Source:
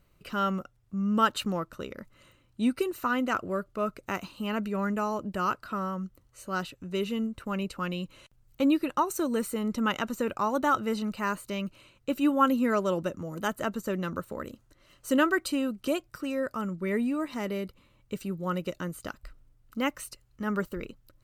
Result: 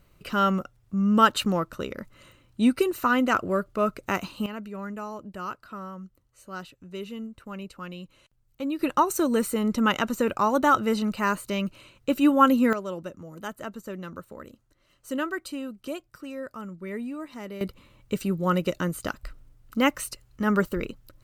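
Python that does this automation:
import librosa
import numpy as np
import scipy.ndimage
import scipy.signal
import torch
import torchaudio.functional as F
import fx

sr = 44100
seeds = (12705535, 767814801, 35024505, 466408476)

y = fx.gain(x, sr, db=fx.steps((0.0, 5.5), (4.46, -6.0), (8.79, 5.0), (12.73, -5.5), (17.61, 7.0)))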